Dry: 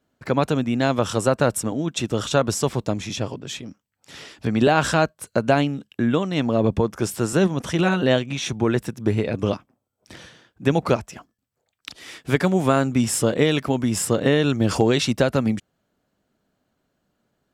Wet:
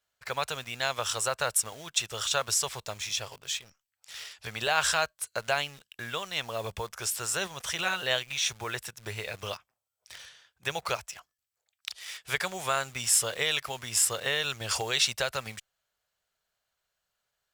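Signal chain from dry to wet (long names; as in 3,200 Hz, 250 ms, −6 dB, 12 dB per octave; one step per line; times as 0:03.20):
low shelf with overshoot 280 Hz −6.5 dB, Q 1.5
in parallel at −11 dB: bit reduction 6 bits
on the sum: guitar amp tone stack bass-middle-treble 10-0-10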